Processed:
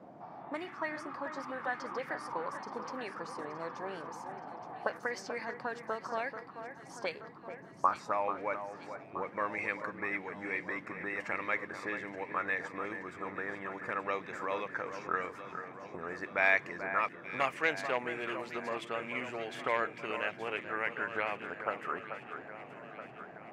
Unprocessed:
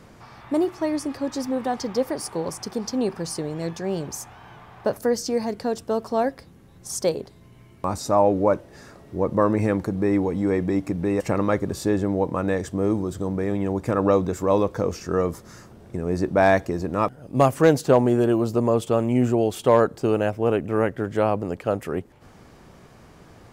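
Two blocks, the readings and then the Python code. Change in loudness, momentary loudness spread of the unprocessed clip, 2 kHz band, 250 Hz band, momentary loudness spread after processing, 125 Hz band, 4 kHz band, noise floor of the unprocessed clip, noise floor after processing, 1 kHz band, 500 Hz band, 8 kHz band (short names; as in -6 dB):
-13.0 dB, 10 LU, +0.5 dB, -21.5 dB, 12 LU, -25.5 dB, -10.0 dB, -50 dBFS, -51 dBFS, -8.5 dB, -17.0 dB, -20.5 dB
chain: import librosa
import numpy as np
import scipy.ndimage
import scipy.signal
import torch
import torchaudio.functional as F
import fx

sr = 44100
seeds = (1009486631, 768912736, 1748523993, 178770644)

y = fx.auto_wah(x, sr, base_hz=660.0, top_hz=2200.0, q=4.0, full_db=-18.0, direction='up')
y = fx.dmg_noise_band(y, sr, seeds[0], low_hz=120.0, high_hz=370.0, level_db=-63.0)
y = fx.echo_alternate(y, sr, ms=437, hz=2000.0, feedback_pct=76, wet_db=-9.0)
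y = y * librosa.db_to_amplitude(5.5)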